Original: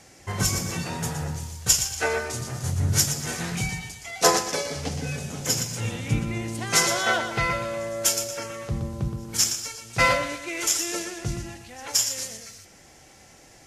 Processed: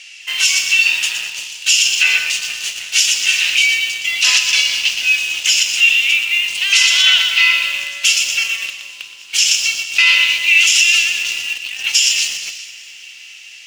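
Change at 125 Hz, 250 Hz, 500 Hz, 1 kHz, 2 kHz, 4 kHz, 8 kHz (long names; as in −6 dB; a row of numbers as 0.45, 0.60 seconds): below −25 dB, below −20 dB, below −15 dB, −6.5 dB, +16.0 dB, +17.5 dB, +8.0 dB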